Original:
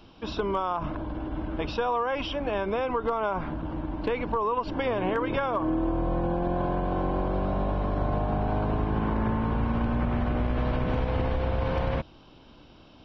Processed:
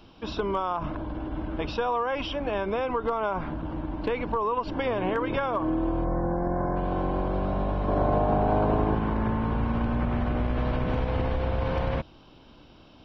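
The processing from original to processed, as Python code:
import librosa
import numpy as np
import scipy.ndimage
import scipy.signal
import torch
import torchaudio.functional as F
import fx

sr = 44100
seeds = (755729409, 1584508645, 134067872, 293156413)

y = fx.spec_box(x, sr, start_s=6.04, length_s=0.72, low_hz=2200.0, high_hz=4900.0, gain_db=-27)
y = fx.peak_eq(y, sr, hz=550.0, db=7.0, octaves=2.3, at=(7.88, 8.95))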